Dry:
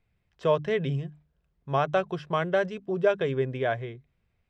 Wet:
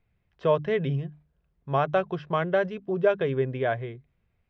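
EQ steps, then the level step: air absorption 170 m; +1.5 dB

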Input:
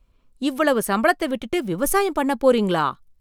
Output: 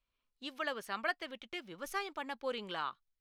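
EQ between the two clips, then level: air absorption 240 m; pre-emphasis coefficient 0.97; +1.0 dB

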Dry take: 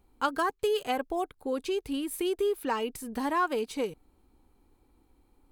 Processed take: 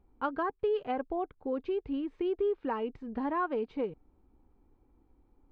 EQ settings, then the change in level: air absorption 160 m; tape spacing loss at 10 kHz 35 dB; 0.0 dB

